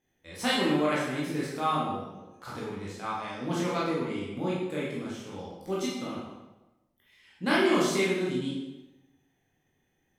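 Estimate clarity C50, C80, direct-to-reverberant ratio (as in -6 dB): 0.5 dB, 3.5 dB, -7.0 dB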